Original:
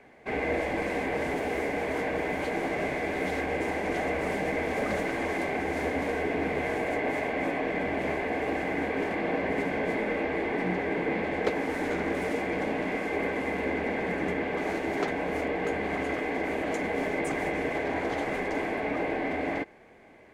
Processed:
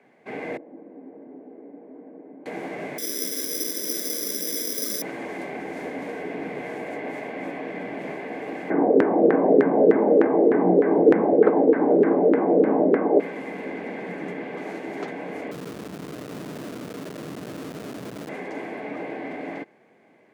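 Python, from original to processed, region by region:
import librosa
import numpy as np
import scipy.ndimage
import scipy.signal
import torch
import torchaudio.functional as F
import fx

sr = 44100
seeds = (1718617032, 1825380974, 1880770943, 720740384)

y = fx.chain(x, sr, fx.ladder_bandpass(hz=340.0, resonance_pct=30),
    fx.peak_eq(hz=270.0, db=5.0, octaves=0.21), at=(0.57, 2.46))
y = fx.chain(y, sr, fx.lowpass(hz=1900.0, slope=12),
    fx.fixed_phaser(hz=330.0, stages=4),
    fx.resample_bad(factor=8, down='none', up='zero_stuff'), at=(2.98, 5.02))
y = fx.chain(y, sr, fx.peak_eq(hz=340.0, db=13.0, octaves=2.2),
    fx.filter_lfo_lowpass(shape='saw_down', hz=3.3, low_hz=410.0, high_hz=1700.0, q=3.5), at=(8.7, 13.2))
y = fx.chain(y, sr, fx.steep_lowpass(hz=730.0, slope=96),
    fx.schmitt(flips_db=-31.5), at=(15.51, 18.29))
y = scipy.signal.sosfilt(scipy.signal.butter(4, 140.0, 'highpass', fs=sr, output='sos'), y)
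y = fx.low_shelf(y, sr, hz=440.0, db=4.5)
y = y * 10.0 ** (-5.0 / 20.0)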